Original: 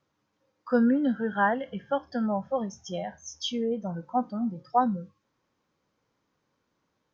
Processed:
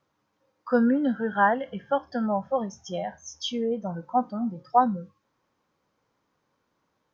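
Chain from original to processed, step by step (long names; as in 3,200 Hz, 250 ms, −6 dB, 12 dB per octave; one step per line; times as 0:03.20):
parametric band 910 Hz +4 dB 1.8 octaves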